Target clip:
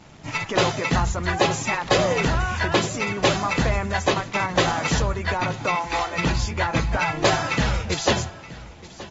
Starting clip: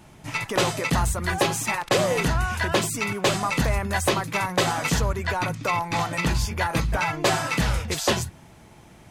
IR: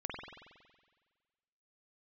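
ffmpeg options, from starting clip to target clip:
-filter_complex "[0:a]asettb=1/sr,asplit=3[a][b][c];[a]atrim=end=5.754[d];[b]atrim=start=5.75:end=6.17,asetpts=PTS-STARTPTS,afade=t=in:d=0.004:c=qsin,afade=t=out:st=0.416:d=0.004:c=qsin,highpass=f=350:w=0.5412,highpass=f=350:w=1.3066[e];[c]atrim=start=6.166[f];[d][e]acrossfade=d=0.004:c1=hsin:c2=qsin[g];[g][f]acrossfade=d=0.004:c1=qsin:c2=hsin,acrusher=bits=7:mix=0:aa=0.5,asettb=1/sr,asplit=3[h][i][j];[h]atrim=end=3.914[k];[i]atrim=start=3.91:end=4.37,asetpts=PTS-STARTPTS,afade=t=in:d=0.004:c=qsin,afade=t=out:st=0.456:d=0.004:c=qsin,aeval=exprs='sgn(val(0))*max(abs(val(0))-0.0133,0)':c=same[l];[j]atrim=start=4.366[m];[k][l]acrossfade=d=0.004:c1=hsin:c2=qsin[n];[n][m]acrossfade=d=0.004:c1=qsin:c2=hsin,aecho=1:1:923:0.119,asplit=2[o][p];[1:a]atrim=start_sample=2205[q];[p][q]afir=irnorm=-1:irlink=0,volume=-21dB[r];[o][r]amix=inputs=2:normalize=0" -ar 44100 -c:a aac -b:a 24k

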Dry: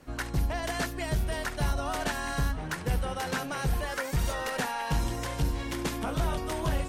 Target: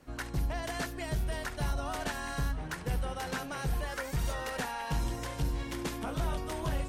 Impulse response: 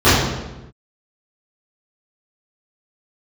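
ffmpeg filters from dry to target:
-filter_complex "[0:a]asplit=2[a][b];[1:a]atrim=start_sample=2205[c];[b][c]afir=irnorm=-1:irlink=0,volume=-51dB[d];[a][d]amix=inputs=2:normalize=0,volume=-4.5dB"

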